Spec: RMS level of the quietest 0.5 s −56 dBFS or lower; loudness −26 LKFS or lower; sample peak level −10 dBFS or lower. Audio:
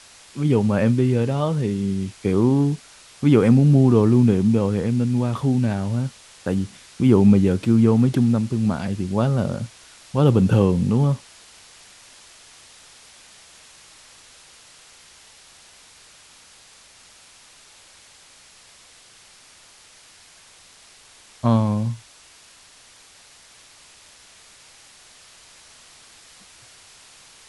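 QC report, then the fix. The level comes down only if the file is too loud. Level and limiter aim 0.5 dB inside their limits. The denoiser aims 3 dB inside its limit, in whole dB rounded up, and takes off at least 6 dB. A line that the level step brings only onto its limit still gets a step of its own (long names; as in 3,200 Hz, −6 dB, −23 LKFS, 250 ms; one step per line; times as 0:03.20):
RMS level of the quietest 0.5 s −50 dBFS: out of spec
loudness −19.5 LKFS: out of spec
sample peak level −3.0 dBFS: out of spec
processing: level −7 dB
brickwall limiter −10.5 dBFS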